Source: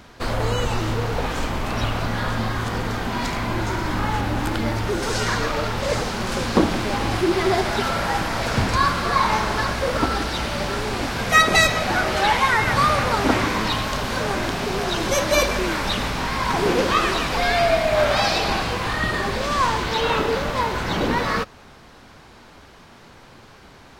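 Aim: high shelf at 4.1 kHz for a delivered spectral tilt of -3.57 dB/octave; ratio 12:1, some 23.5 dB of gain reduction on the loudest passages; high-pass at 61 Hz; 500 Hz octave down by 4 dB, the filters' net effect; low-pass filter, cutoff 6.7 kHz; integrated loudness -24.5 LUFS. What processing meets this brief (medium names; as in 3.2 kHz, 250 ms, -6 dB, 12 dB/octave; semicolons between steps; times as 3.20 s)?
high-pass 61 Hz; low-pass 6.7 kHz; peaking EQ 500 Hz -5.5 dB; treble shelf 4.1 kHz +8 dB; compression 12:1, threshold -34 dBFS; trim +12.5 dB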